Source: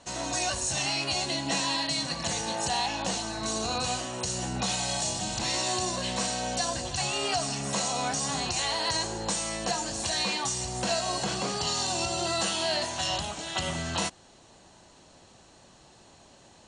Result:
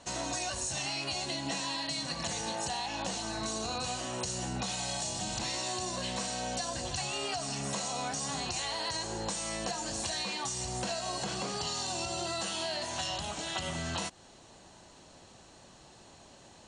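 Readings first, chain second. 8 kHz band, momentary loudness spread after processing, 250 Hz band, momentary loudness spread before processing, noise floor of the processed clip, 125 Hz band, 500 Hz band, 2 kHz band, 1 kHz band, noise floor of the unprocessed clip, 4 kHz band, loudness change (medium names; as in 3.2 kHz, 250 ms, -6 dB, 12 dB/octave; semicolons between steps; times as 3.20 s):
-5.5 dB, 2 LU, -4.5 dB, 4 LU, -56 dBFS, -4.5 dB, -5.0 dB, -5.5 dB, -5.5 dB, -56 dBFS, -5.5 dB, -5.5 dB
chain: compression, threshold -32 dBFS, peak gain reduction 8.5 dB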